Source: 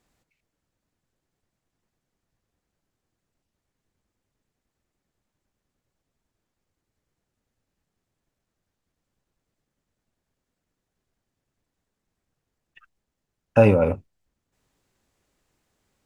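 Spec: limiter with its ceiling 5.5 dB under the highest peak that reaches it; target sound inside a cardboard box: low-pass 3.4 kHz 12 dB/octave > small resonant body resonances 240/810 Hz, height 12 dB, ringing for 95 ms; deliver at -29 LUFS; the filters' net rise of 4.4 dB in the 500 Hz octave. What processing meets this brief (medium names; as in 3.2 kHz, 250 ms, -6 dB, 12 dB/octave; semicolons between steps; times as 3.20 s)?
peaking EQ 500 Hz +5 dB; peak limiter -6 dBFS; low-pass 3.4 kHz 12 dB/octave; small resonant body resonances 240/810 Hz, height 12 dB, ringing for 95 ms; trim -12 dB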